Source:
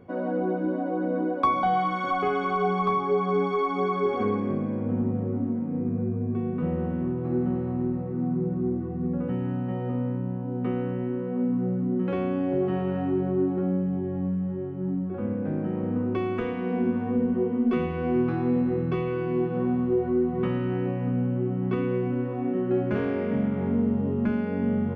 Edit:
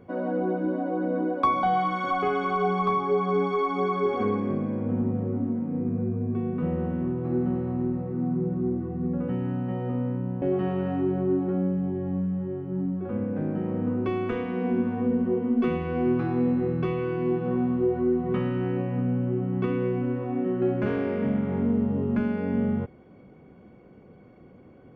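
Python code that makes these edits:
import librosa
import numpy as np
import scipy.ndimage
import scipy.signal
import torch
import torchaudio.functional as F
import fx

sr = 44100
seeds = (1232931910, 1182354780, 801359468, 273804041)

y = fx.edit(x, sr, fx.cut(start_s=10.42, length_s=2.09), tone=tone)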